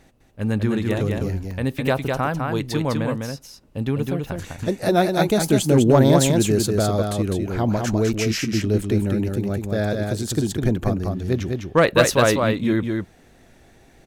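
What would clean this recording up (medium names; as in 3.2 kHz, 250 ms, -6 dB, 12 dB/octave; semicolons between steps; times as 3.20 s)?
interpolate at 1.51/9.44 s, 1.5 ms; inverse comb 204 ms -4 dB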